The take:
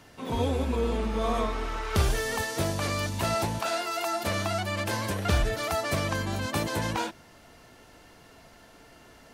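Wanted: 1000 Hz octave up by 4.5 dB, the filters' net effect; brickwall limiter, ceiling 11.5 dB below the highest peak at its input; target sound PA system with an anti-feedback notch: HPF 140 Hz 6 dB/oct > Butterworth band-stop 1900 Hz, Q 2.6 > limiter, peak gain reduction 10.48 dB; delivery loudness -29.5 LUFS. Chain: bell 1000 Hz +6 dB; limiter -21.5 dBFS; HPF 140 Hz 6 dB/oct; Butterworth band-stop 1900 Hz, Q 2.6; gain +9 dB; limiter -21.5 dBFS

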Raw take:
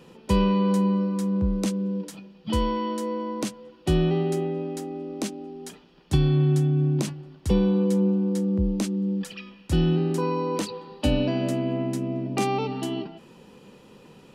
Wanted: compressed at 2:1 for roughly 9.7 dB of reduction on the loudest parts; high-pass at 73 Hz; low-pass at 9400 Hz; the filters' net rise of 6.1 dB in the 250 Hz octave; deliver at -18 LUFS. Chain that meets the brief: HPF 73 Hz; LPF 9400 Hz; bell 250 Hz +9 dB; compressor 2:1, threshold -31 dBFS; gain +11 dB

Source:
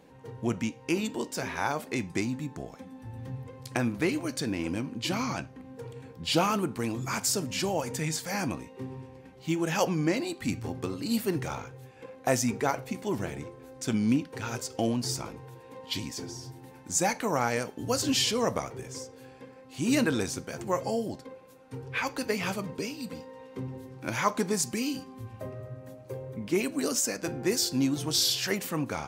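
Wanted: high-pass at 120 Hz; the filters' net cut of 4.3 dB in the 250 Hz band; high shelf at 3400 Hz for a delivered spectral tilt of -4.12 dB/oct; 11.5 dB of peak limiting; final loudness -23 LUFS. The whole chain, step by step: HPF 120 Hz; bell 250 Hz -5 dB; high shelf 3400 Hz -7 dB; gain +13 dB; limiter -10.5 dBFS

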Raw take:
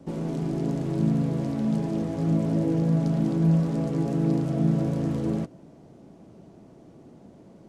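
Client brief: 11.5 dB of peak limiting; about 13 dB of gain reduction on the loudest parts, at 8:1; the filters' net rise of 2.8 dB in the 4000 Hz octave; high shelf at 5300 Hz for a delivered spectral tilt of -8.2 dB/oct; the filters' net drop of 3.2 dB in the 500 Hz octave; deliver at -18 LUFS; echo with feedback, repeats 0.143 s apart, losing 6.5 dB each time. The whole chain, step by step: bell 500 Hz -4.5 dB; bell 4000 Hz +6 dB; high shelf 5300 Hz -5.5 dB; compressor 8:1, threshold -32 dBFS; limiter -36.5 dBFS; feedback echo 0.143 s, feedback 47%, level -6.5 dB; gain +26.5 dB

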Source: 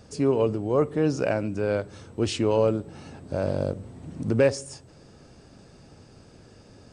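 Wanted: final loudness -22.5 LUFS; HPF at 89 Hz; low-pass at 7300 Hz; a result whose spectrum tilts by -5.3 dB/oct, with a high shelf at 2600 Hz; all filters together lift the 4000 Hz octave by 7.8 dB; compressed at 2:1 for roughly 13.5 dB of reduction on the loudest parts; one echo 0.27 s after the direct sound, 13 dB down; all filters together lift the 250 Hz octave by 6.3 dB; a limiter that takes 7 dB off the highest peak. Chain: HPF 89 Hz; LPF 7300 Hz; bell 250 Hz +8 dB; high shelf 2600 Hz +6.5 dB; bell 4000 Hz +5 dB; compressor 2:1, threshold -38 dBFS; limiter -25 dBFS; echo 0.27 s -13 dB; gain +15 dB

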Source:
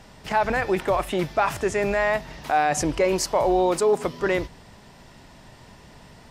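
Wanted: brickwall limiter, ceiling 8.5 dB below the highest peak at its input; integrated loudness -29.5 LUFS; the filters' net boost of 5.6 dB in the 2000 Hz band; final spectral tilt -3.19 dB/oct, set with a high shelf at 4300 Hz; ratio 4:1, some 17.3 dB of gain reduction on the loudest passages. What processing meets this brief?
bell 2000 Hz +5 dB; high shelf 4300 Hz +9 dB; compressor 4:1, threshold -37 dBFS; gain +11 dB; limiter -18 dBFS

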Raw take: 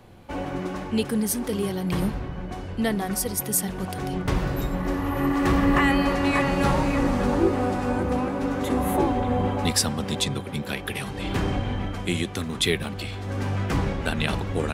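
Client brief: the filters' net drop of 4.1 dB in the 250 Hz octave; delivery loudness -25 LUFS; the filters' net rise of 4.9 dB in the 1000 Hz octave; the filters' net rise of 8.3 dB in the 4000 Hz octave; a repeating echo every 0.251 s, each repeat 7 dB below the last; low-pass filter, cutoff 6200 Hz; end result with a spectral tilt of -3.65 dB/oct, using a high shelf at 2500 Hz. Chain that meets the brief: LPF 6200 Hz; bell 250 Hz -5.5 dB; bell 1000 Hz +5.5 dB; high shelf 2500 Hz +5.5 dB; bell 4000 Hz +6 dB; feedback echo 0.251 s, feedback 45%, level -7 dB; gain -2.5 dB

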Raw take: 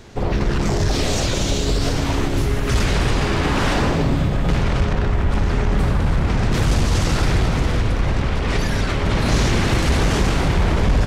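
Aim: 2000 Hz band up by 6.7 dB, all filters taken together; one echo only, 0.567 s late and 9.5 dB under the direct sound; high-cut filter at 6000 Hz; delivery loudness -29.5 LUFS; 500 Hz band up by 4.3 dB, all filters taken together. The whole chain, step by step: LPF 6000 Hz; bell 500 Hz +5 dB; bell 2000 Hz +8 dB; echo 0.567 s -9.5 dB; gain -12 dB

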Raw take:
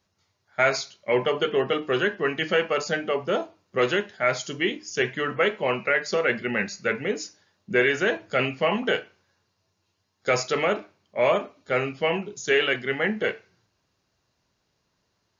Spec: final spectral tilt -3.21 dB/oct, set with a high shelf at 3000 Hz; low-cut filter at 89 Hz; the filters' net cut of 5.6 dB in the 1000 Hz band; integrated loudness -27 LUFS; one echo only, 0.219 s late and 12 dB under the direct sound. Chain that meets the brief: HPF 89 Hz; bell 1000 Hz -7 dB; high shelf 3000 Hz -7 dB; echo 0.219 s -12 dB; gain +0.5 dB

